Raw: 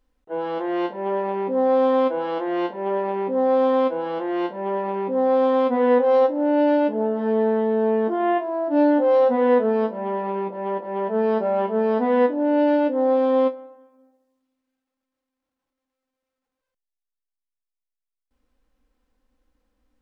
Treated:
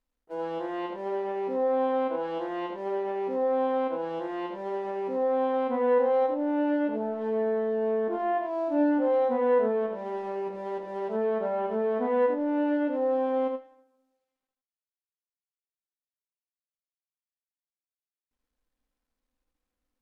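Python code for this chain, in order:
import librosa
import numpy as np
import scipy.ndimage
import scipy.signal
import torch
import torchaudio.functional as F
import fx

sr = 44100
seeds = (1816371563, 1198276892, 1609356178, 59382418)

p1 = fx.law_mismatch(x, sr, coded='A')
p2 = fx.env_lowpass_down(p1, sr, base_hz=2700.0, full_db=-18.0)
p3 = p2 + fx.echo_single(p2, sr, ms=79, db=-5.5, dry=0)
y = F.gain(torch.from_numpy(p3), -7.0).numpy()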